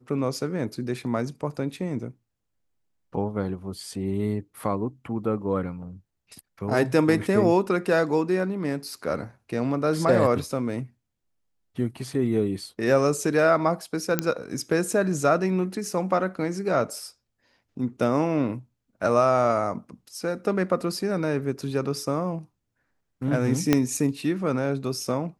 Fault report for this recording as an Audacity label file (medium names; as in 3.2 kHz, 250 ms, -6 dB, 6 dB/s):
14.190000	14.190000	pop -7 dBFS
23.730000	23.730000	pop -5 dBFS